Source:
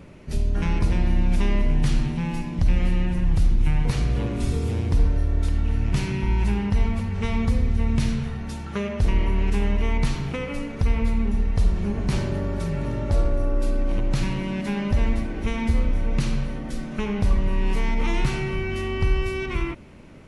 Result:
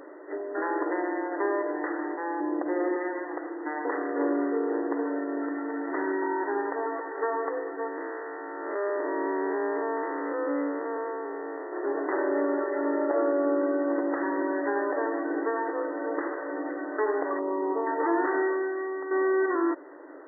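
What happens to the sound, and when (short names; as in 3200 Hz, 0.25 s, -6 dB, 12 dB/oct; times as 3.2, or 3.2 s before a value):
2.4–2.96 tilt -3.5 dB/oct
7.88–11.73 time blur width 0.275 s
17.39–17.87 polynomial smoothing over 65 samples
18.43–19.11 fade out quadratic, to -9.5 dB
whole clip: FFT band-pass 270–2000 Hz; gain +6 dB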